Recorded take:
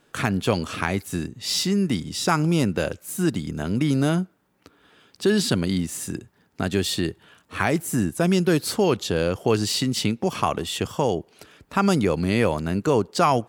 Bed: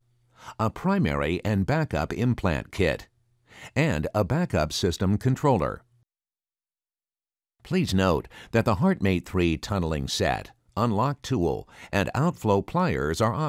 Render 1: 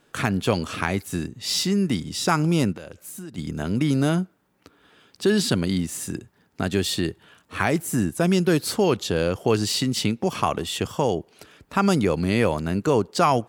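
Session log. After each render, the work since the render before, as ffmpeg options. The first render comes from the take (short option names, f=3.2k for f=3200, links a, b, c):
-filter_complex "[0:a]asplit=3[a][b][c];[a]afade=t=out:st=2.72:d=0.02[d];[b]acompressor=threshold=-34dB:ratio=8:attack=3.2:release=140:knee=1:detection=peak,afade=t=in:st=2.72:d=0.02,afade=t=out:st=3.37:d=0.02[e];[c]afade=t=in:st=3.37:d=0.02[f];[d][e][f]amix=inputs=3:normalize=0"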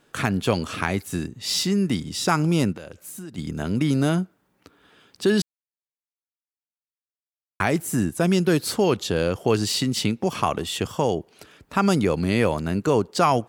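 -filter_complex "[0:a]asplit=3[a][b][c];[a]atrim=end=5.42,asetpts=PTS-STARTPTS,afade=t=out:st=5.416:d=0.004:c=hsin[d];[b]atrim=start=5.42:end=7.6,asetpts=PTS-STARTPTS,volume=0[e];[c]atrim=start=7.6,asetpts=PTS-STARTPTS,afade=t=in:d=0.004:c=hsin[f];[d][e][f]concat=n=3:v=0:a=1"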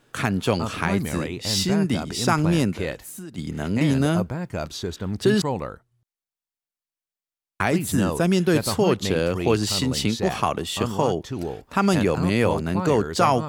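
-filter_complex "[1:a]volume=-5dB[a];[0:a][a]amix=inputs=2:normalize=0"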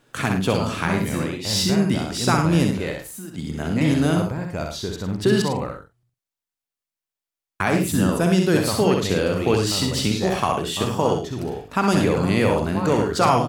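-filter_complex "[0:a]asplit=2[a][b];[b]adelay=48,volume=-12dB[c];[a][c]amix=inputs=2:normalize=0,aecho=1:1:64.14|105:0.562|0.282"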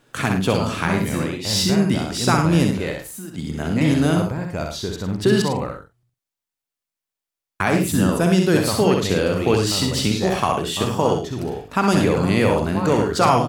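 -af "volume=1.5dB"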